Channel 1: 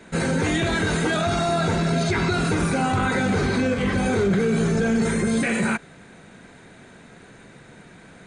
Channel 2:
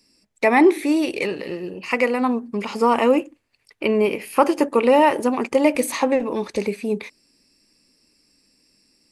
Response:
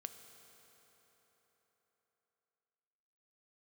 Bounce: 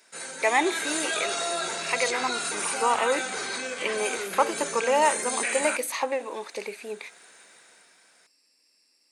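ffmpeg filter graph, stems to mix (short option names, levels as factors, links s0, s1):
-filter_complex "[0:a]dynaudnorm=f=120:g=11:m=2.51,aemphasis=mode=production:type=75fm,volume=0.224[s0];[1:a]volume=0.631[s1];[s0][s1]amix=inputs=2:normalize=0,highpass=600"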